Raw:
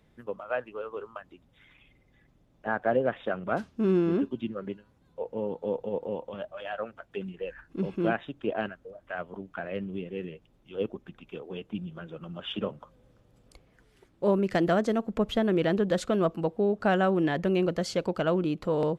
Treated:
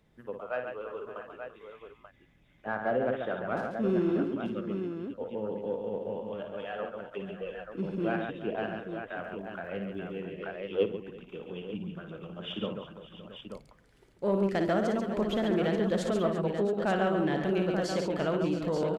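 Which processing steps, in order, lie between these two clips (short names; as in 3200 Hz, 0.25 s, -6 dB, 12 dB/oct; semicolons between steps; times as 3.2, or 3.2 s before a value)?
tapped delay 56/139/340/566/673/885 ms -7/-6/-15/-17/-15/-8 dB; 9.13–10.21 crackle 160/s -58 dBFS; in parallel at -5 dB: soft clip -19.5 dBFS, distortion -15 dB; 10.38–10.85 on the sum: spectral gain 300–5800 Hz +8 dB; gain -7.5 dB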